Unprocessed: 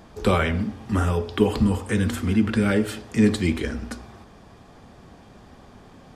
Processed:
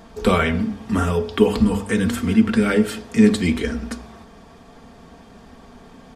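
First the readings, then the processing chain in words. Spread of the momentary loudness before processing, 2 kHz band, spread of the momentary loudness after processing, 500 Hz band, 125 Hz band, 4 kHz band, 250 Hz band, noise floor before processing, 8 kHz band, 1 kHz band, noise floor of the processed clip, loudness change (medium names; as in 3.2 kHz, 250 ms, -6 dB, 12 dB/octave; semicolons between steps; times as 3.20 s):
8 LU, +3.5 dB, 9 LU, +4.0 dB, 0.0 dB, +3.5 dB, +4.5 dB, -49 dBFS, +3.5 dB, +3.5 dB, -46 dBFS, +3.5 dB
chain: hum notches 50/100/150/200 Hz; comb 4.4 ms, depth 48%; trim +2.5 dB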